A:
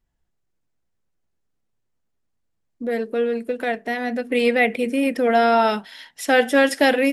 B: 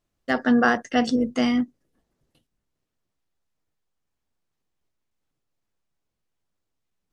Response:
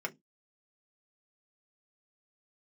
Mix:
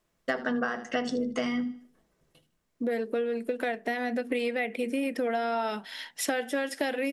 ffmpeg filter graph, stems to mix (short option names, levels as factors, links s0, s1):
-filter_complex "[0:a]highpass=170,volume=1.12[s0];[1:a]volume=1.19,asplit=3[s1][s2][s3];[s2]volume=0.596[s4];[s3]volume=0.237[s5];[2:a]atrim=start_sample=2205[s6];[s4][s6]afir=irnorm=-1:irlink=0[s7];[s5]aecho=0:1:77|154|231|308:1|0.27|0.0729|0.0197[s8];[s0][s1][s7][s8]amix=inputs=4:normalize=0,acompressor=threshold=0.0501:ratio=12"